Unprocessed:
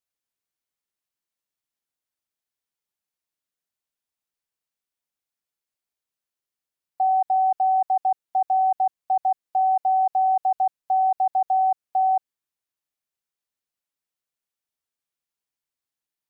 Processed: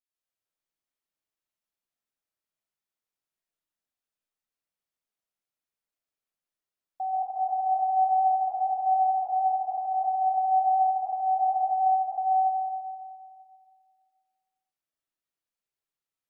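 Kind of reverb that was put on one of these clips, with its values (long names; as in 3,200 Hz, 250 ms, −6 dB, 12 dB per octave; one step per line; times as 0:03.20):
comb and all-pass reverb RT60 2.1 s, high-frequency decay 0.4×, pre-delay 110 ms, DRR −8 dB
level −10.5 dB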